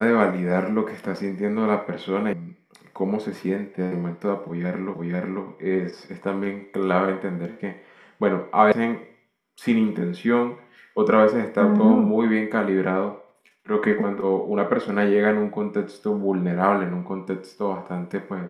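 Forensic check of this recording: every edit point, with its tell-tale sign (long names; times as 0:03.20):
0:02.33: cut off before it has died away
0:04.94: the same again, the last 0.49 s
0:08.72: cut off before it has died away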